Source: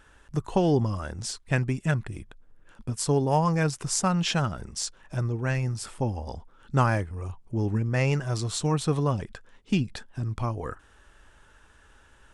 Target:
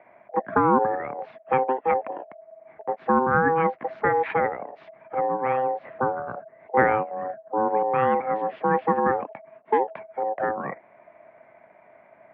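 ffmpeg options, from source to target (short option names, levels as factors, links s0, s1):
-af "aeval=exprs='val(0)*sin(2*PI*710*n/s)':c=same,highpass=f=200:t=q:w=0.5412,highpass=f=200:t=q:w=1.307,lowpass=f=2200:t=q:w=0.5176,lowpass=f=2200:t=q:w=0.7071,lowpass=f=2200:t=q:w=1.932,afreqshift=-61,volume=2"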